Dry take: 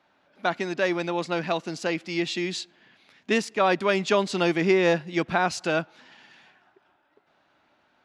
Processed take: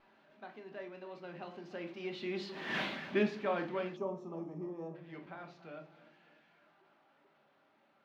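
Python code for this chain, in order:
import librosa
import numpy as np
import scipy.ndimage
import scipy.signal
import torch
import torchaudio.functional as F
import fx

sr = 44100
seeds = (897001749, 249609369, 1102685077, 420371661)

y = x + 0.5 * 10.0 ** (-34.5 / 20.0) * np.sign(x)
y = fx.doppler_pass(y, sr, speed_mps=20, closest_m=1.1, pass_at_s=2.78)
y = scipy.signal.sosfilt(scipy.signal.butter(2, 160.0, 'highpass', fs=sr, output='sos'), y)
y = fx.peak_eq(y, sr, hz=5300.0, db=-2.0, octaves=0.29)
y = fx.vibrato(y, sr, rate_hz=2.1, depth_cents=43.0)
y = fx.air_absorb(y, sr, metres=270.0)
y = fx.echo_feedback(y, sr, ms=296, feedback_pct=59, wet_db=-17.5)
y = fx.room_shoebox(y, sr, seeds[0], volume_m3=260.0, walls='furnished', distance_m=1.2)
y = fx.spec_box(y, sr, start_s=3.97, length_s=0.98, low_hz=1300.0, high_hz=5200.0, gain_db=-21)
y = y * librosa.db_to_amplitude(8.0)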